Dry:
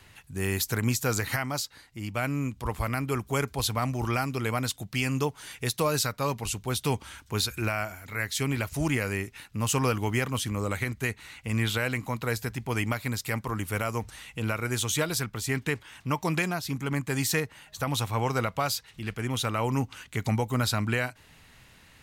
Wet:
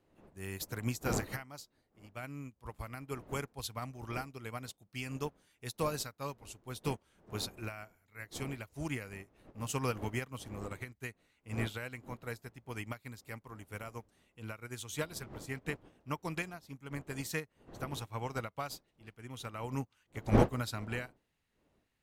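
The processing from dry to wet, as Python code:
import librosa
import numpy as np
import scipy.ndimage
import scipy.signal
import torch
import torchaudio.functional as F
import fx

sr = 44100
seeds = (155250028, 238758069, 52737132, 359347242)

y = fx.dmg_wind(x, sr, seeds[0], corner_hz=470.0, level_db=-38.0)
y = fx.upward_expand(y, sr, threshold_db=-37.0, expansion=2.5)
y = y * librosa.db_to_amplitude(-1.0)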